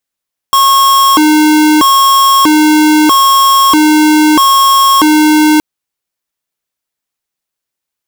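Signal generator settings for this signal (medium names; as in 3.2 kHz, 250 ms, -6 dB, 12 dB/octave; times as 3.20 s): siren hi-lo 306–1090 Hz 0.78 per s square -6.5 dBFS 5.07 s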